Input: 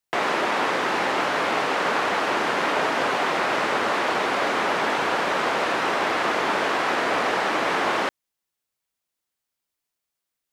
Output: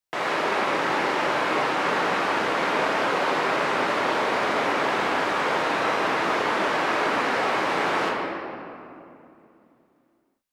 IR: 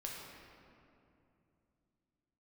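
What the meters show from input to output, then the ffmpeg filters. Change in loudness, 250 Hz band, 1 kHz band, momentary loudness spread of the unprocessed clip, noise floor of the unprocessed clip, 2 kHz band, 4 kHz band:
-1.0 dB, +0.5 dB, -0.5 dB, 0 LU, -84 dBFS, -1.0 dB, -2.0 dB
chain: -filter_complex "[1:a]atrim=start_sample=2205[a];[0:a][a]afir=irnorm=-1:irlink=0"

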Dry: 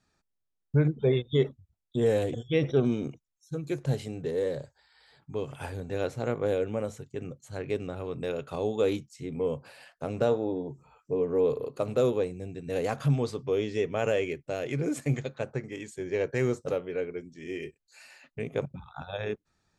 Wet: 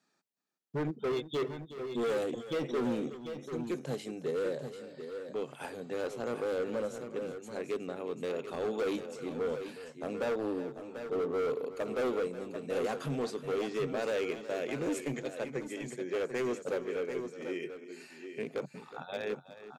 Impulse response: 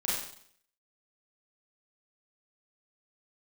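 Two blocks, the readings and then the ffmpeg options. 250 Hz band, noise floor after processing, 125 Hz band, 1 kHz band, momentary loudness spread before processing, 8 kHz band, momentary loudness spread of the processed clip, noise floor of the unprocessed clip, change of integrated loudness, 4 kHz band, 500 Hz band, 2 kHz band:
-4.5 dB, -56 dBFS, -14.0 dB, -1.5 dB, 13 LU, -1.5 dB, 9 LU, -81 dBFS, -5.5 dB, -3.0 dB, -4.5 dB, -2.5 dB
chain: -af "highpass=f=190:w=0.5412,highpass=f=190:w=1.3066,asoftclip=type=hard:threshold=-27dB,aecho=1:1:367|740|748:0.2|0.335|0.15,volume=-2dB"

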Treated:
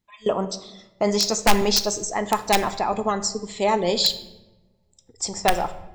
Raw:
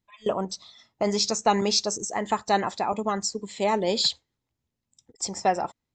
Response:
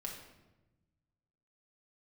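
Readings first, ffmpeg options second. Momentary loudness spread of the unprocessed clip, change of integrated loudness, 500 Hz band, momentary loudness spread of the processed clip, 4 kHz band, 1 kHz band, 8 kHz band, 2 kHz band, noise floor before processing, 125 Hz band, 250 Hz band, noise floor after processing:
9 LU, +3.5 dB, +3.5 dB, 9 LU, +3.5 dB, +2.5 dB, +4.0 dB, +6.0 dB, -84 dBFS, +3.5 dB, +3.0 dB, -64 dBFS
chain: -filter_complex "[0:a]aeval=exprs='(mod(3.98*val(0)+1,2)-1)/3.98':c=same,asplit=2[a][b];[b]asubboost=boost=12:cutoff=74[c];[1:a]atrim=start_sample=2205[d];[c][d]afir=irnorm=-1:irlink=0,volume=-3dB[e];[a][e]amix=inputs=2:normalize=0"

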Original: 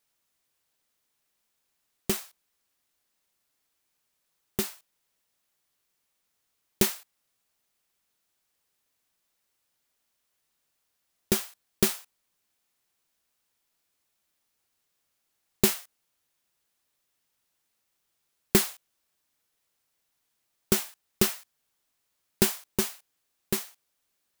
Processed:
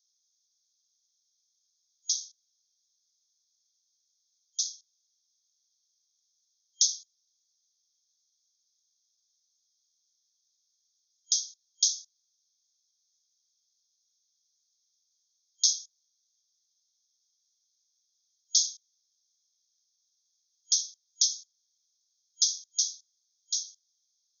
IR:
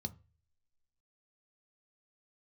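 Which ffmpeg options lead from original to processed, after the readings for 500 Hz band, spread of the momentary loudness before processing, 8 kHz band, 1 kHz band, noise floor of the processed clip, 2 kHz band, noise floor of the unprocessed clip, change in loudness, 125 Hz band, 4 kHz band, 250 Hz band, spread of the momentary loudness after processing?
under -40 dB, 14 LU, +6.0 dB, under -40 dB, -77 dBFS, under -40 dB, -78 dBFS, 0.0 dB, under -40 dB, +5.5 dB, under -40 dB, 14 LU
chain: -af "afftfilt=real='re*between(b*sr/4096,3200,6700)':imag='im*between(b*sr/4096,3200,6700)':win_size=4096:overlap=0.75,aexciter=amount=5.9:drive=2.2:freq=5.2k,volume=1dB"

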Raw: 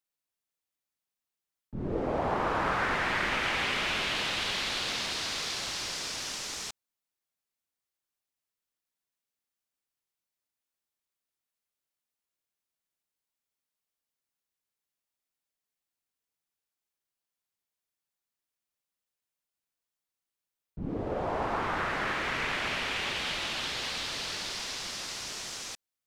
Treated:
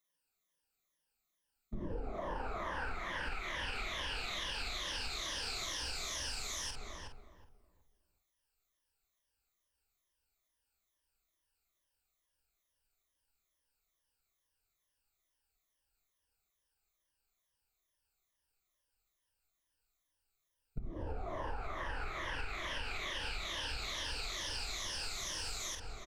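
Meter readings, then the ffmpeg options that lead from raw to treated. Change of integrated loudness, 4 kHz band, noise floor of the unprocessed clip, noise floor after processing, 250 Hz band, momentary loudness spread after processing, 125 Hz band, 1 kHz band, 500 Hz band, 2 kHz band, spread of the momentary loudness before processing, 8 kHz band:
-8.5 dB, -7.0 dB, under -85 dBFS, -85 dBFS, -11.5 dB, 6 LU, -6.0 dB, -10.5 dB, -10.5 dB, -9.5 dB, 8 LU, -5.0 dB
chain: -filter_complex "[0:a]afftfilt=real='re*pow(10,15/40*sin(2*PI*(1.2*log(max(b,1)*sr/1024/100)/log(2)-(-2.3)*(pts-256)/sr)))':imag='im*pow(10,15/40*sin(2*PI*(1.2*log(max(b,1)*sr/1024/100)/log(2)-(-2.3)*(pts-256)/sr)))':win_size=1024:overlap=0.75,asplit=2[a][b];[b]adelay=47,volume=-8dB[c];[a][c]amix=inputs=2:normalize=0,asplit=2[d][e];[e]adelay=368,lowpass=f=890:p=1,volume=-5dB,asplit=2[f][g];[g]adelay=368,lowpass=f=890:p=1,volume=0.3,asplit=2[h][i];[i]adelay=368,lowpass=f=890:p=1,volume=0.3,asplit=2[j][k];[k]adelay=368,lowpass=f=890:p=1,volume=0.3[l];[f][h][j][l]amix=inputs=4:normalize=0[m];[d][m]amix=inputs=2:normalize=0,asubboost=boost=10:cutoff=55,acompressor=threshold=-38dB:ratio=8,volume=1dB"

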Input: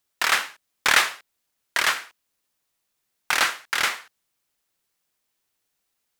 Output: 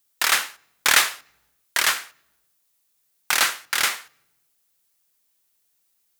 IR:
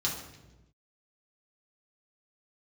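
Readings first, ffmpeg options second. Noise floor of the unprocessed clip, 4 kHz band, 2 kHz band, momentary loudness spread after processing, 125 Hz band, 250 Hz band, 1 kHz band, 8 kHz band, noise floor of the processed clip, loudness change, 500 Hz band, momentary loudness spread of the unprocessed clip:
-77 dBFS, +2.5 dB, 0.0 dB, 10 LU, n/a, -0.5 dB, -0.5 dB, +6.0 dB, -69 dBFS, +1.5 dB, -1.0 dB, 10 LU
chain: -filter_complex "[0:a]highshelf=f=6.2k:g=11,asplit=2[a][b];[1:a]atrim=start_sample=2205[c];[b][c]afir=irnorm=-1:irlink=0,volume=-28.5dB[d];[a][d]amix=inputs=2:normalize=0,volume=-1dB"

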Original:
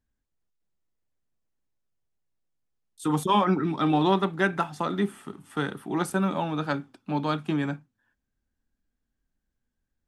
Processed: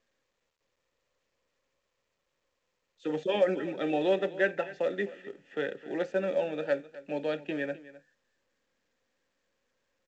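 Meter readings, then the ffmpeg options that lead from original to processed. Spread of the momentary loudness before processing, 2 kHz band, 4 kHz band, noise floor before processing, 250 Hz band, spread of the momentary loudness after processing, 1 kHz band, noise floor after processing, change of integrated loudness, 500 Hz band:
10 LU, -3.0 dB, -7.0 dB, -82 dBFS, -9.0 dB, 10 LU, -13.0 dB, -81 dBFS, -4.5 dB, +2.0 dB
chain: -filter_complex "[0:a]highpass=79,acontrast=57,asplit=3[a][b][c];[a]bandpass=f=530:t=q:w=8,volume=0dB[d];[b]bandpass=f=1.84k:t=q:w=8,volume=-6dB[e];[c]bandpass=f=2.48k:t=q:w=8,volume=-9dB[f];[d][e][f]amix=inputs=3:normalize=0,aecho=1:1:259:0.133,volume=4dB" -ar 16000 -c:a pcm_mulaw

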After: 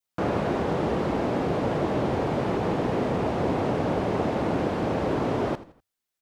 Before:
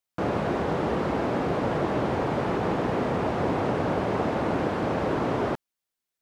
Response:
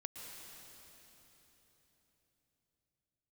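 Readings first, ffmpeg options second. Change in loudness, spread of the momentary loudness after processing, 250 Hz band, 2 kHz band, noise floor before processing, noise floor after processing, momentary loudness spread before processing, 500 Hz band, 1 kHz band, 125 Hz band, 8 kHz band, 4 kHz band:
+0.5 dB, 1 LU, +1.0 dB, -2.0 dB, under -85 dBFS, -85 dBFS, 1 LU, +0.5 dB, -1.0 dB, +1.0 dB, n/a, +0.5 dB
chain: -filter_complex "[0:a]asplit=4[a][b][c][d];[b]adelay=83,afreqshift=-32,volume=-16dB[e];[c]adelay=166,afreqshift=-64,volume=-24.9dB[f];[d]adelay=249,afreqshift=-96,volume=-33.7dB[g];[a][e][f][g]amix=inputs=4:normalize=0,adynamicequalizer=threshold=0.00631:dfrequency=1400:dqfactor=1:tfrequency=1400:tqfactor=1:attack=5:release=100:ratio=0.375:range=2:mode=cutabove:tftype=bell,volume=1dB"

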